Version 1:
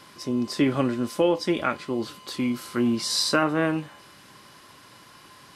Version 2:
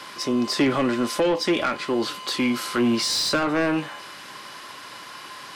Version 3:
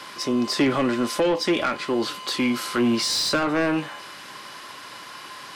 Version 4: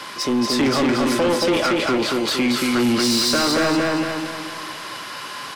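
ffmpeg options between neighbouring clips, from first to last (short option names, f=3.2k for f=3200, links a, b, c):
-filter_complex "[0:a]asplit=2[a][b];[b]highpass=f=720:p=1,volume=18dB,asoftclip=type=tanh:threshold=-9.5dB[c];[a][c]amix=inputs=2:normalize=0,lowpass=f=5.1k:p=1,volume=-6dB,acrossover=split=380[d][e];[e]acompressor=threshold=-23dB:ratio=3[f];[d][f]amix=inputs=2:normalize=0"
-af anull
-af "aecho=1:1:229|458|687|916|1145|1374:0.708|0.326|0.15|0.0689|0.0317|0.0146,asoftclip=type=tanh:threshold=-19.5dB,volume=5.5dB"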